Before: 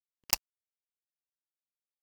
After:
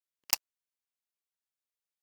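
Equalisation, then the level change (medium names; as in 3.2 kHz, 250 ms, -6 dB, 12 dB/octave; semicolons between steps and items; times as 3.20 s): high-pass 600 Hz 6 dB/octave; 0.0 dB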